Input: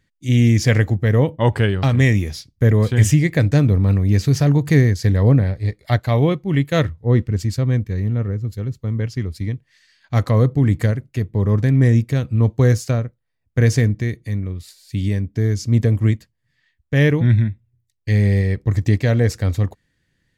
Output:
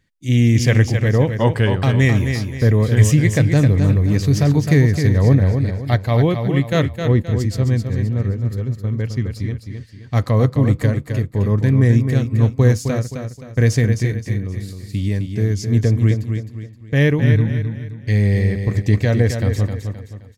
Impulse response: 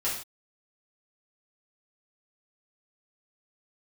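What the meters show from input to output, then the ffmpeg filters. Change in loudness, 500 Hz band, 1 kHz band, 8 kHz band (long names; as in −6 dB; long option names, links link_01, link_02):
+0.5 dB, +1.0 dB, +0.5 dB, +1.0 dB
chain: -filter_complex "[0:a]bandreject=frequency=1400:width=22,asplit=2[link_01][link_02];[link_02]aecho=0:1:262|524|786|1048:0.447|0.165|0.0612|0.0226[link_03];[link_01][link_03]amix=inputs=2:normalize=0"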